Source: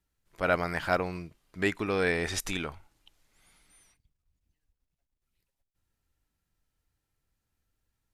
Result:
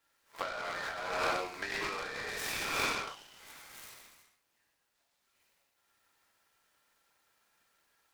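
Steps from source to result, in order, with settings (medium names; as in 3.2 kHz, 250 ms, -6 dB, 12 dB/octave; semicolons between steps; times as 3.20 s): peak limiter -17.5 dBFS, peak gain reduction 7.5 dB; treble shelf 2.9 kHz -11.5 dB; gated-style reverb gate 470 ms falling, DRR -7 dB; spectral replace 4.97–5.48 s, 3.2–6.4 kHz after; high-pass 890 Hz 12 dB/octave; treble shelf 9.6 kHz +11 dB; compressor with a negative ratio -40 dBFS, ratio -1; delay time shaken by noise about 2.1 kHz, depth 0.04 ms; trim +3.5 dB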